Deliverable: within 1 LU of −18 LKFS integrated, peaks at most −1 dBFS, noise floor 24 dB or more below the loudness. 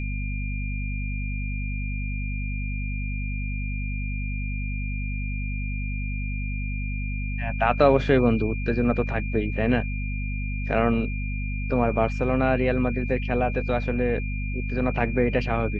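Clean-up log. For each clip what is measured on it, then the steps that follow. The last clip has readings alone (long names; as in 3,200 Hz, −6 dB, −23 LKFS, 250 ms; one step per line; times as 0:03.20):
mains hum 50 Hz; hum harmonics up to 250 Hz; level of the hum −26 dBFS; interfering tone 2,400 Hz; level of the tone −36 dBFS; integrated loudness −26.5 LKFS; sample peak −6.0 dBFS; target loudness −18.0 LKFS
→ mains-hum notches 50/100/150/200/250 Hz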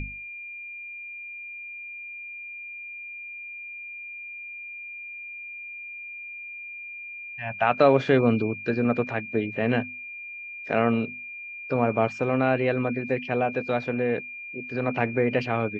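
mains hum none found; interfering tone 2,400 Hz; level of the tone −36 dBFS
→ notch filter 2,400 Hz, Q 30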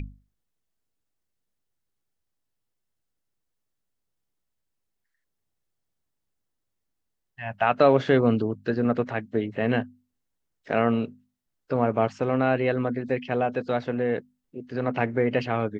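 interfering tone none found; integrated loudness −25.0 LKFS; sample peak −6.5 dBFS; target loudness −18.0 LKFS
→ level +7 dB
brickwall limiter −1 dBFS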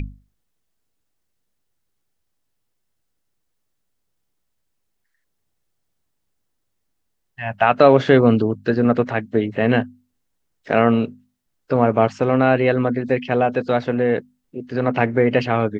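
integrated loudness −18.5 LKFS; sample peak −1.0 dBFS; background noise floor −73 dBFS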